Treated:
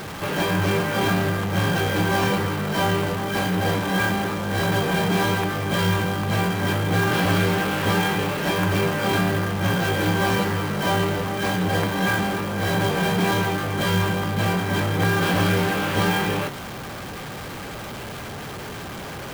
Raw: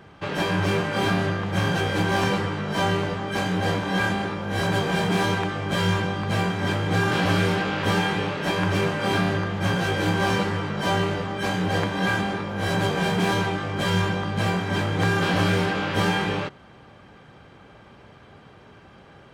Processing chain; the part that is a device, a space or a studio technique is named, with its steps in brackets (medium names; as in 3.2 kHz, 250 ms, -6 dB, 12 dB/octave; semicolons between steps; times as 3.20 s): early CD player with a faulty converter (jump at every zero crossing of -29 dBFS; sampling jitter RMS 0.02 ms)